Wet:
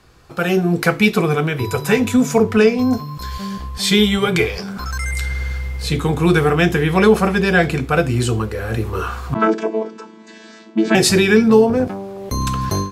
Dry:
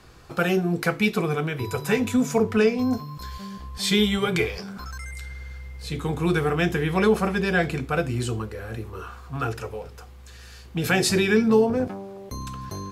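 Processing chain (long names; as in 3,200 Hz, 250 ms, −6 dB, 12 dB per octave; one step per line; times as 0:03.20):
0:09.34–0:10.95: channel vocoder with a chord as carrier bare fifth, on A3
automatic gain control gain up to 16 dB
level −1 dB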